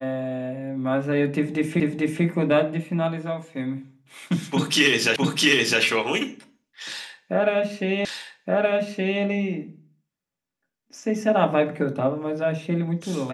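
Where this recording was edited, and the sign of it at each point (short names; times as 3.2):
1.8 repeat of the last 0.44 s
5.16 repeat of the last 0.66 s
8.05 repeat of the last 1.17 s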